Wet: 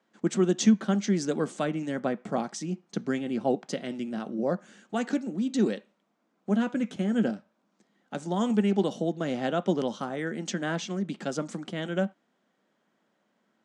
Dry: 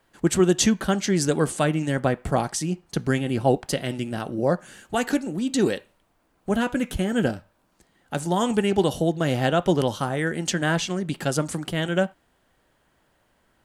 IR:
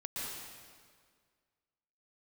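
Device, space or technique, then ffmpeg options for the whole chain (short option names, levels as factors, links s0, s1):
television speaker: -af "highpass=f=180:w=0.5412,highpass=f=180:w=1.3066,equalizer=f=210:t=q:w=4:g=9,equalizer=f=920:t=q:w=4:g=-3,equalizer=f=1700:t=q:w=4:g=-3,equalizer=f=2800:t=q:w=4:g=-4,equalizer=f=4500:t=q:w=4:g=-4,lowpass=f=6800:w=0.5412,lowpass=f=6800:w=1.3066,volume=0.501"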